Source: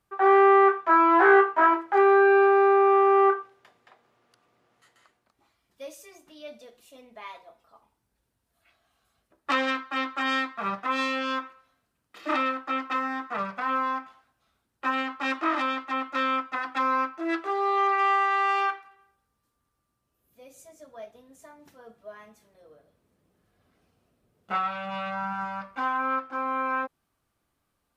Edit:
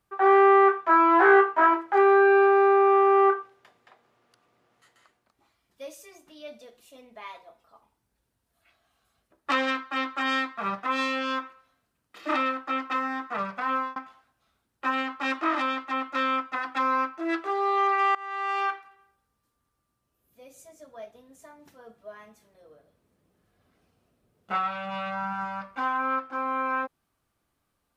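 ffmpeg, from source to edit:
ffmpeg -i in.wav -filter_complex "[0:a]asplit=3[link_01][link_02][link_03];[link_01]atrim=end=13.96,asetpts=PTS-STARTPTS,afade=type=out:start_time=13.71:duration=0.25:curve=qsin[link_04];[link_02]atrim=start=13.96:end=18.15,asetpts=PTS-STARTPTS,afade=type=in:duration=0.004:curve=hsin,afade=type=out:start_time=4.186:duration=0.004:curve=hsin:silence=0.0707946[link_05];[link_03]atrim=start=18.15,asetpts=PTS-STARTPTS,afade=type=in:duration=0.59:silence=0.0707946[link_06];[link_04][link_05][link_06]concat=n=3:v=0:a=1" out.wav

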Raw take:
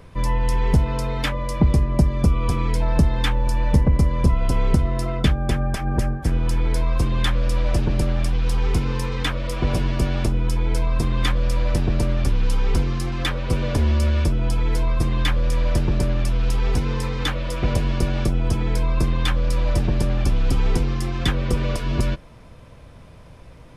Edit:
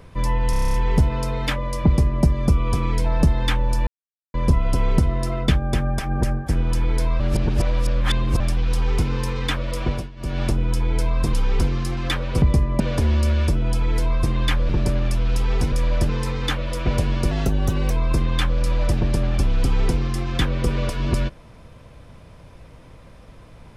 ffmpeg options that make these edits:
ffmpeg -i in.wav -filter_complex "[0:a]asplit=23[link_01][link_02][link_03][link_04][link_05][link_06][link_07][link_08][link_09][link_10][link_11][link_12][link_13][link_14][link_15][link_16][link_17][link_18][link_19][link_20][link_21][link_22][link_23];[link_01]atrim=end=0.532[link_24];[link_02]atrim=start=0.498:end=0.532[link_25];[link_03]atrim=start=0.498:end=0.532[link_26];[link_04]atrim=start=0.498:end=0.532[link_27];[link_05]atrim=start=0.498:end=0.532[link_28];[link_06]atrim=start=0.498:end=0.532[link_29];[link_07]atrim=start=0.498:end=0.532[link_30];[link_08]atrim=start=0.498:end=0.532[link_31];[link_09]atrim=start=0.498:end=3.63,asetpts=PTS-STARTPTS,afade=type=out:start_time=3.128:duration=0.004:curve=hsin[link_32];[link_10]atrim=start=3.63:end=4.1,asetpts=PTS-STARTPTS,volume=0[link_33];[link_11]atrim=start=4.1:end=6.962,asetpts=PTS-STARTPTS,afade=type=in:duration=0.004:curve=hsin[link_34];[link_12]atrim=start=6.958:end=8.162,asetpts=PTS-STARTPTS,areverse[link_35];[link_13]atrim=start=8.158:end=9.86,asetpts=PTS-STARTPTS,afade=type=out:start_time=1.442:duration=0.26:silence=0.112202[link_36];[link_14]atrim=start=9.86:end=9.92,asetpts=PTS-STARTPTS,volume=-19dB[link_37];[link_15]atrim=start=9.92:end=11.092,asetpts=PTS-STARTPTS,afade=type=in:duration=0.26:silence=0.112202[link_38];[link_16]atrim=start=12.478:end=13.572[link_39];[link_17]atrim=start=1.618:end=2.002[link_40];[link_18]atrim=start=13.568:end=15.462[link_41];[link_19]atrim=start=15.828:end=16.862[link_42];[link_20]atrim=start=15.458:end=15.832[link_43];[link_21]atrim=start=16.858:end=18.084[link_44];[link_22]atrim=start=18.08:end=18.77,asetpts=PTS-STARTPTS,asetrate=51156,aresample=44100[link_45];[link_23]atrim=start=18.766[link_46];[link_24][link_25]acrossfade=duration=0.004:curve1=hsin:curve2=hsin[link_47];[link_47][link_26]acrossfade=duration=0.004:curve1=hsin:curve2=hsin[link_48];[link_48][link_27]acrossfade=duration=0.004:curve1=hsin:curve2=hsin[link_49];[link_49][link_28]acrossfade=duration=0.004:curve1=hsin:curve2=hsin[link_50];[link_50][link_29]acrossfade=duration=0.004:curve1=hsin:curve2=hsin[link_51];[link_51][link_30]acrossfade=duration=0.004:curve1=hsin:curve2=hsin[link_52];[link_52][link_31]acrossfade=duration=0.004:curve1=hsin:curve2=hsin[link_53];[link_32][link_33][link_34]concat=n=3:v=0:a=1[link_54];[link_53][link_54]acrossfade=duration=0.004:curve1=hsin:curve2=hsin[link_55];[link_55][link_35]acrossfade=duration=0.004:curve1=hsin:curve2=hsin[link_56];[link_36][link_37][link_38]concat=n=3:v=0:a=1[link_57];[link_56][link_57]acrossfade=duration=0.004:curve1=hsin:curve2=hsin[link_58];[link_58][link_39]acrossfade=duration=0.004:curve1=hsin:curve2=hsin[link_59];[link_59][link_40]acrossfade=duration=0.004:curve1=hsin:curve2=hsin[link_60];[link_60][link_41]acrossfade=duration=0.004:curve1=hsin:curve2=hsin[link_61];[link_61][link_42]acrossfade=duration=0.004:curve1=hsin:curve2=hsin[link_62];[link_62][link_43]acrossfade=duration=0.004:curve1=hsin:curve2=hsin[link_63];[link_63][link_44]acrossfade=duration=0.004:curve1=hsin:curve2=hsin[link_64];[link_64][link_45]acrossfade=duration=0.004:curve1=hsin:curve2=hsin[link_65];[link_65][link_46]acrossfade=duration=0.004:curve1=hsin:curve2=hsin" out.wav

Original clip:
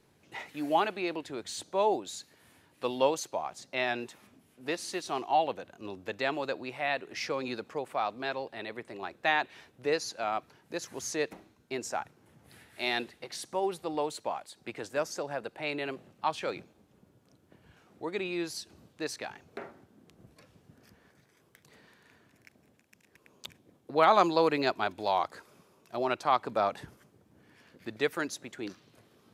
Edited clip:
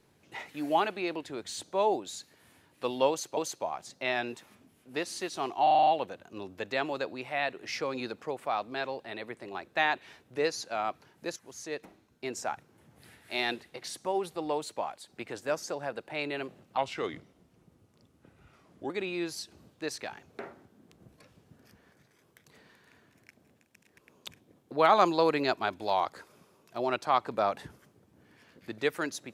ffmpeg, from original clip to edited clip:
ffmpeg -i in.wav -filter_complex "[0:a]asplit=11[link_01][link_02][link_03][link_04][link_05][link_06][link_07][link_08][link_09][link_10][link_11];[link_01]atrim=end=3.372[link_12];[link_02]atrim=start=3.088:end=5.392[link_13];[link_03]atrim=start=5.348:end=5.392[link_14];[link_04]atrim=start=5.348:end=5.392[link_15];[link_05]atrim=start=5.348:end=5.392[link_16];[link_06]atrim=start=5.348:end=5.392[link_17];[link_07]atrim=start=5.348:end=5.392[link_18];[link_08]atrim=start=5.348:end=10.84,asetpts=PTS-STARTPTS,afade=type=out:start_time=5.488:duration=0.004:curve=hsin:silence=0.237137[link_19];[link_09]atrim=start=10.84:end=16.254,asetpts=PTS-STARTPTS,afade=type=in:duration=1.04:silence=0.237137[link_20];[link_10]atrim=start=16.25:end=18.08,asetpts=PTS-STARTPTS,asetrate=37926,aresample=44100[link_21];[link_11]atrim=start=18.076[link_22];[link_12][link_13]acrossfade=duration=0.004:curve1=hsin:curve2=hsin[link_23];[link_23][link_14]acrossfade=duration=0.004:curve1=hsin:curve2=hsin[link_24];[link_24][link_15]acrossfade=duration=0.004:curve1=hsin:curve2=hsin[link_25];[link_25][link_16]acrossfade=duration=0.004:curve1=hsin:curve2=hsin[link_26];[link_26][link_17]acrossfade=duration=0.004:curve1=hsin:curve2=hsin[link_27];[link_27][link_18]acrossfade=duration=0.004:curve1=hsin:curve2=hsin[link_28];[link_19][link_20]concat=n=2:v=0:a=1[link_29];[link_28][link_29]acrossfade=duration=0.004:curve1=hsin:curve2=hsin[link_30];[link_30][link_21]acrossfade=duration=0.004:curve1=hsin:curve2=hsin[link_31];[link_31][link_22]acrossfade=duration=0.004:curve1=hsin:curve2=hsin" out.wav

